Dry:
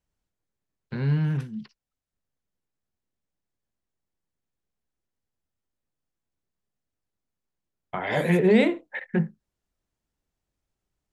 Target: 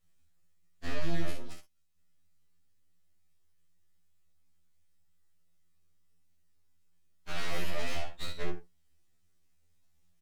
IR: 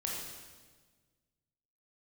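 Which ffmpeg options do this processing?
-filter_complex "[0:a]equalizer=f=550:t=o:w=2.4:g=-9.5,acrossover=split=1100[a][b];[a]acompressor=threshold=-30dB:ratio=6[c];[c][b]amix=inputs=2:normalize=0,alimiter=level_in=3dB:limit=-24dB:level=0:latency=1,volume=-3dB,acrossover=split=170|1200[d][e][f];[d]acompressor=threshold=-44dB:ratio=4[g];[e]acompressor=threshold=-41dB:ratio=4[h];[f]acompressor=threshold=-45dB:ratio=4[i];[g][h][i]amix=inputs=3:normalize=0,aeval=exprs='(tanh(70.8*val(0)+0.25)-tanh(0.25))/70.8':c=same,flanger=delay=5.9:depth=1.5:regen=-53:speed=0.21:shape=triangular,aeval=exprs='abs(val(0))':c=same,aecho=1:1:27|70:0.596|0.473,asetrate=48000,aresample=44100,afftfilt=real='re*2*eq(mod(b,4),0)':imag='im*2*eq(mod(b,4),0)':win_size=2048:overlap=0.75,volume=14.5dB"

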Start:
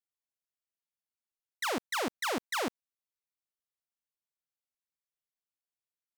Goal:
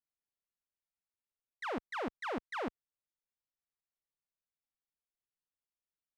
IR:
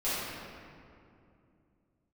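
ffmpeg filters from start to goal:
-filter_complex "[0:a]aemphasis=mode=reproduction:type=75fm,acrossover=split=3200[a][b];[b]acompressor=threshold=-51dB:ratio=4:attack=1:release=60[c];[a][c]amix=inputs=2:normalize=0,lowshelf=f=75:g=11,volume=-5dB"

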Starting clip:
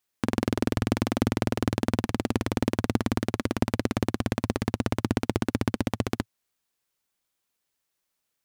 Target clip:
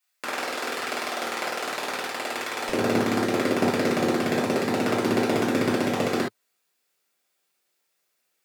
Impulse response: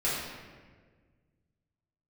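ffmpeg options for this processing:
-filter_complex "[0:a]asetnsamples=n=441:p=0,asendcmd='2.69 highpass f 230',highpass=840[a];[1:a]atrim=start_sample=2205,atrim=end_sample=3528[b];[a][b]afir=irnorm=-1:irlink=0"

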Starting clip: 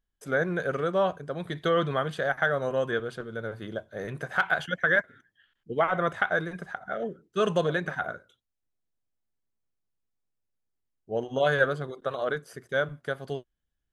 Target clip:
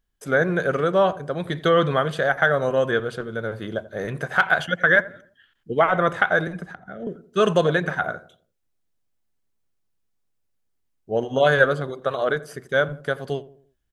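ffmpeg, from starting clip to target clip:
-filter_complex "[0:a]asettb=1/sr,asplit=3[a][b][c];[a]atrim=end=6.474[d];[b]atrim=start=6.47:end=7.07,asetpts=PTS-STARTPTS,afade=t=in:d=0.004:c=qsin,afade=t=out:st=0.596:d=0.004:c=qsin,acrossover=split=300[e][f];[f]acompressor=threshold=-44dB:ratio=8[g];[e][g]amix=inputs=2:normalize=0[h];[c]atrim=start=7.066[i];[d][h]acrossfade=d=0.004:c1=hsin:c2=qsin[j];[j][i]acrossfade=d=0.004:c1=qsin:c2=hsin,asplit=2[k][l];[l]adelay=85,lowpass=f=970:p=1,volume=-16dB,asplit=2[m][n];[n]adelay=85,lowpass=f=970:p=1,volume=0.45,asplit=2[o][p];[p]adelay=85,lowpass=f=970:p=1,volume=0.45,asplit=2[q][r];[r]adelay=85,lowpass=f=970:p=1,volume=0.45[s];[m][o][q][s]amix=inputs=4:normalize=0[t];[k][t]amix=inputs=2:normalize=0,volume=6.5dB"

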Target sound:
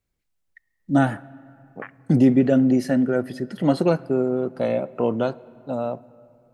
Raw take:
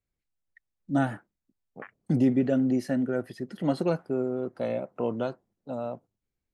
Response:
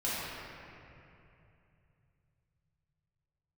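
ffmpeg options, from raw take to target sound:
-filter_complex "[0:a]asplit=2[a][b];[1:a]atrim=start_sample=2205,adelay=21[c];[b][c]afir=irnorm=-1:irlink=0,volume=-28.5dB[d];[a][d]amix=inputs=2:normalize=0,volume=7dB"

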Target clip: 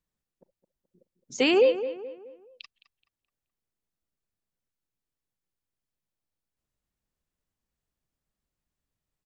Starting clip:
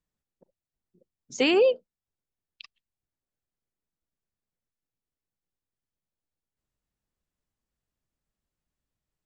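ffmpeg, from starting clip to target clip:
-filter_complex "[0:a]asplit=2[a][b];[b]adelay=213,lowpass=f=2.3k:p=1,volume=-12dB,asplit=2[c][d];[d]adelay=213,lowpass=f=2.3k:p=1,volume=0.42,asplit=2[e][f];[f]adelay=213,lowpass=f=2.3k:p=1,volume=0.42,asplit=2[g][h];[h]adelay=213,lowpass=f=2.3k:p=1,volume=0.42[i];[a][c][e][g][i]amix=inputs=5:normalize=0"

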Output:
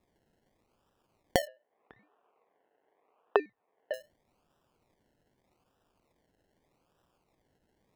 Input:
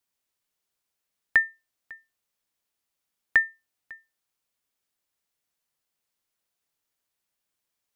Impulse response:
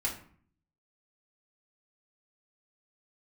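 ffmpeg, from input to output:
-filter_complex "[0:a]acompressor=threshold=-41dB:ratio=3,acrusher=samples=29:mix=1:aa=0.000001:lfo=1:lforange=17.4:lforate=0.82,asettb=1/sr,asplit=3[a][b][c];[a]atrim=end=1.474[d];[b]atrim=start=1.47:end=3.94,asetpts=PTS-STARTPTS,afade=t=in:d=0.004:c=qsin,afade=t=out:st=2.466:d=0.004:c=qsin,highpass=430,equalizer=f=440:t=q:w=4:g=7,equalizer=f=740:t=q:w=4:g=6,equalizer=f=1.1k:t=q:w=4:g=6,lowpass=f=2.7k:w=0.5412,lowpass=f=2.7k:w=1.3066[e];[c]atrim=start=3.936[f];[d][e]acrossfade=d=0.004:c1=hsin:c2=qsin[g];[g][f]acrossfade=d=0.004:c1=qsin:c2=hsin,volume=8.5dB"

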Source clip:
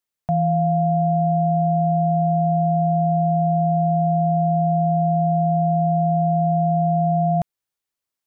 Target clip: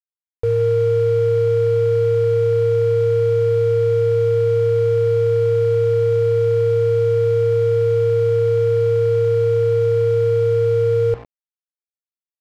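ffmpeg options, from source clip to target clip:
-filter_complex "[0:a]equalizer=f=240:t=o:w=1.6:g=-6,asetrate=29371,aresample=44100,bandreject=f=60:t=h:w=6,bandreject=f=120:t=h:w=6,bandreject=f=180:t=h:w=6,aecho=1:1:2.2:0.4,asplit=2[a][b];[b]adelay=170,highpass=300,lowpass=3.4k,asoftclip=type=hard:threshold=-20.5dB,volume=-17dB[c];[a][c]amix=inputs=2:normalize=0,acrusher=bits=5:mix=0:aa=0.000001,adynamicsmooth=sensitivity=3:basefreq=710,volume=2dB"

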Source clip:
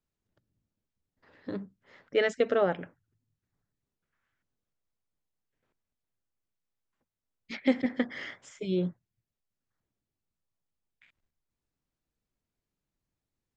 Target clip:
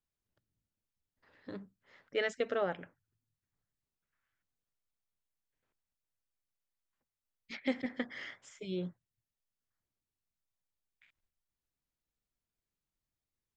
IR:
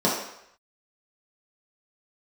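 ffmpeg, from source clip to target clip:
-af "equalizer=f=250:w=0.35:g=-5,volume=-4dB"

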